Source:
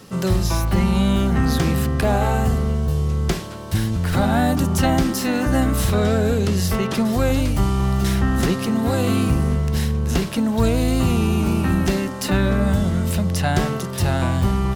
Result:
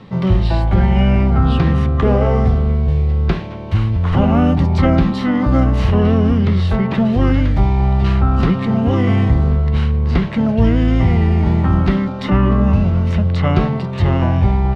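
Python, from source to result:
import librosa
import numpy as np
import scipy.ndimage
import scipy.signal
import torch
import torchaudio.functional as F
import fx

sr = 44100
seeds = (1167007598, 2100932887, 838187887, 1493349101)

y = fx.formant_shift(x, sr, semitones=-5)
y = fx.air_absorb(y, sr, metres=320.0)
y = F.gain(torch.from_numpy(y), 5.5).numpy()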